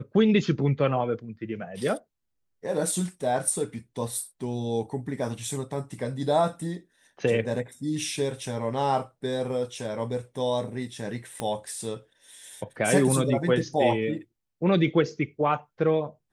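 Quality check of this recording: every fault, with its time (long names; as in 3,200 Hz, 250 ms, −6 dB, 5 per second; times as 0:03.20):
0:11.40: click −16 dBFS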